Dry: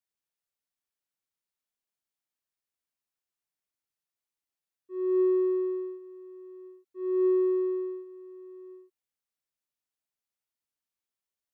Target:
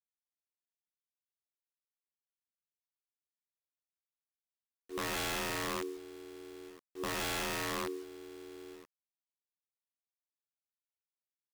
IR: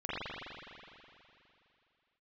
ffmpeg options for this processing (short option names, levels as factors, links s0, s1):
-af "tremolo=f=85:d=0.824,acrusher=bits=8:mix=0:aa=0.000001,aeval=exprs='(mod(35.5*val(0)+1,2)-1)/35.5':c=same"